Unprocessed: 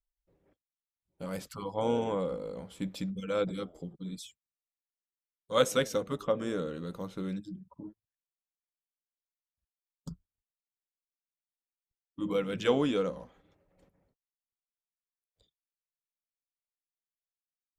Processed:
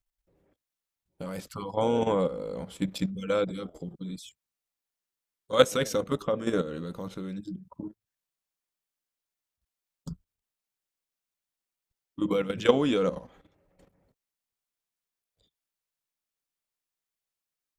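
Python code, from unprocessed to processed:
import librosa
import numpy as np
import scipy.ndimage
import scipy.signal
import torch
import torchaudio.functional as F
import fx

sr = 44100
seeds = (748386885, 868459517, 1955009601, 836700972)

y = fx.level_steps(x, sr, step_db=11)
y = F.gain(torch.from_numpy(y), 8.5).numpy()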